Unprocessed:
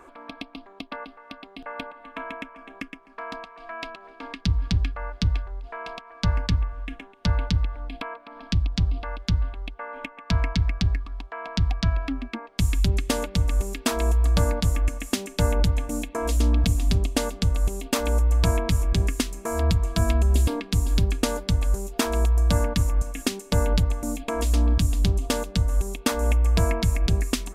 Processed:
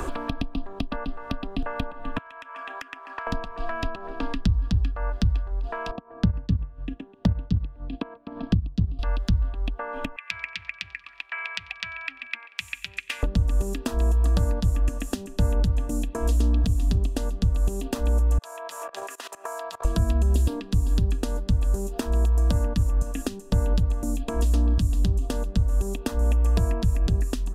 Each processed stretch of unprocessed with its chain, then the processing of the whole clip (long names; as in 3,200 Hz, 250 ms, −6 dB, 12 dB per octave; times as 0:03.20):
0:02.18–0:03.27: high-pass filter 1,200 Hz + high-shelf EQ 4,100 Hz −8.5 dB + downward compressor 10 to 1, threshold −44 dBFS
0:05.91–0:08.99: transient designer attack +7 dB, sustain −7 dB + resonant band-pass 280 Hz, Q 0.73
0:10.16–0:13.23: high-pass with resonance 2,300 Hz, resonance Q 9.2 + repeating echo 92 ms, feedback 56%, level −24 dB
0:18.38–0:19.85: high-pass filter 660 Hz 24 dB per octave + output level in coarse steps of 22 dB
whole clip: low-shelf EQ 480 Hz +8 dB; notch filter 2,200 Hz, Q 5.2; multiband upward and downward compressor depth 100%; level −8 dB